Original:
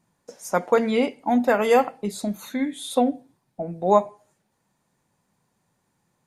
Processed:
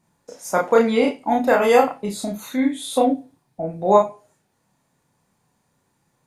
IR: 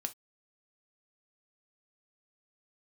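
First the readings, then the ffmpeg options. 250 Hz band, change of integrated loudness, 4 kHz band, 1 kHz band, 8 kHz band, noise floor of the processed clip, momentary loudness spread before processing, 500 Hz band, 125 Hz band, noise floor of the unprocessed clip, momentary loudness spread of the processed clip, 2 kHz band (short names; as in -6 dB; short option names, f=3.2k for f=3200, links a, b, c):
+2.5 dB, +3.0 dB, +3.0 dB, +3.5 dB, +3.5 dB, -69 dBFS, 15 LU, +4.0 dB, +1.5 dB, -73 dBFS, 13 LU, +3.5 dB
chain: -filter_complex "[0:a]asplit=2[a][b];[1:a]atrim=start_sample=2205,adelay=31[c];[b][c]afir=irnorm=-1:irlink=0,volume=-0.5dB[d];[a][d]amix=inputs=2:normalize=0,volume=1dB"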